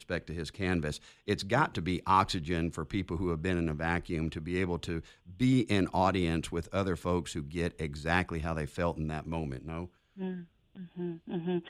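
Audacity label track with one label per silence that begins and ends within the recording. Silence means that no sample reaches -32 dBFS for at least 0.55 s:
10.310000	10.990000	silence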